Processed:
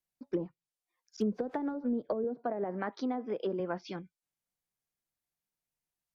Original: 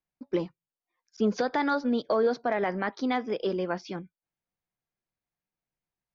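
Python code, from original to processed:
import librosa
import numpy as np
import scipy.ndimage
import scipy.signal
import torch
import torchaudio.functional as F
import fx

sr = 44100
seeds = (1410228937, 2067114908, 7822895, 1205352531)

y = fx.crossing_spikes(x, sr, level_db=-31.0, at=(1.21, 1.74))
y = fx.highpass(y, sr, hz=130.0, slope=12, at=(2.24, 3.6))
y = fx.env_lowpass_down(y, sr, base_hz=370.0, full_db=-21.5)
y = fx.high_shelf(y, sr, hz=4800.0, db=10.5)
y = y * 10.0 ** (-4.5 / 20.0)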